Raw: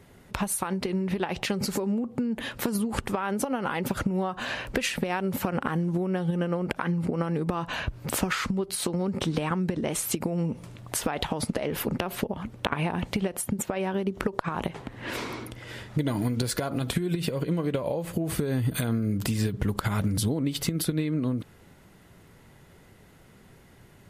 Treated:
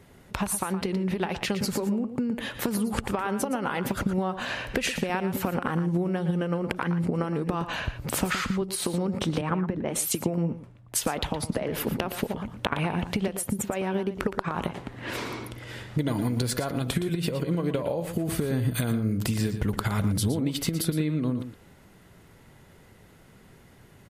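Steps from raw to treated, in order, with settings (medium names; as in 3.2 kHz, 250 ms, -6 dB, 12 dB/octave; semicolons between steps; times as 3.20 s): echo from a far wall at 20 m, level -10 dB; 9.41–11.69 s: three bands expanded up and down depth 100%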